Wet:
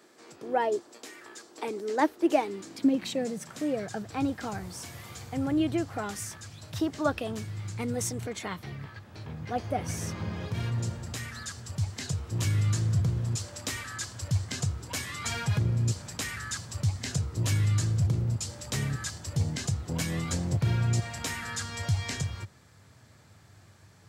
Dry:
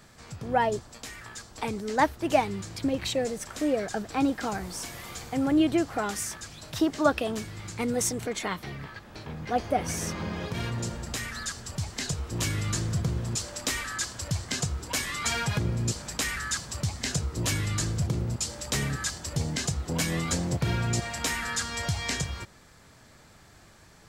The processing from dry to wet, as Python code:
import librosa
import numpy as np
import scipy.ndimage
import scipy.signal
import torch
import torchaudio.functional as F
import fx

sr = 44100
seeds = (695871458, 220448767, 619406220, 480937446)

y = fx.filter_sweep_highpass(x, sr, from_hz=340.0, to_hz=97.0, start_s=2.39, end_s=4.18, q=3.7)
y = F.gain(torch.from_numpy(y), -5.0).numpy()